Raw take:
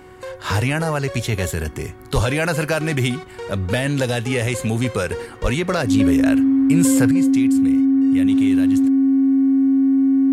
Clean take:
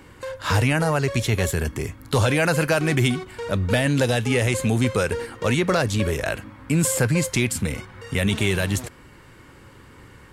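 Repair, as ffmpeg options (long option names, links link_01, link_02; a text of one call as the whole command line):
ffmpeg -i in.wav -filter_complex "[0:a]bandreject=frequency=370.1:width_type=h:width=4,bandreject=frequency=740.2:width_type=h:width=4,bandreject=frequency=1110.3:width_type=h:width=4,bandreject=frequency=1480.4:width_type=h:width=4,bandreject=frequency=1850.5:width_type=h:width=4,bandreject=frequency=2220.6:width_type=h:width=4,bandreject=frequency=270:width=30,asplit=3[link_01][link_02][link_03];[link_01]afade=type=out:start_time=2.14:duration=0.02[link_04];[link_02]highpass=frequency=140:width=0.5412,highpass=frequency=140:width=1.3066,afade=type=in:start_time=2.14:duration=0.02,afade=type=out:start_time=2.26:duration=0.02[link_05];[link_03]afade=type=in:start_time=2.26:duration=0.02[link_06];[link_04][link_05][link_06]amix=inputs=3:normalize=0,asplit=3[link_07][link_08][link_09];[link_07]afade=type=out:start_time=5.42:duration=0.02[link_10];[link_08]highpass=frequency=140:width=0.5412,highpass=frequency=140:width=1.3066,afade=type=in:start_time=5.42:duration=0.02,afade=type=out:start_time=5.54:duration=0.02[link_11];[link_09]afade=type=in:start_time=5.54:duration=0.02[link_12];[link_10][link_11][link_12]amix=inputs=3:normalize=0,asetnsamples=nb_out_samples=441:pad=0,asendcmd='7.11 volume volume 9dB',volume=0dB" out.wav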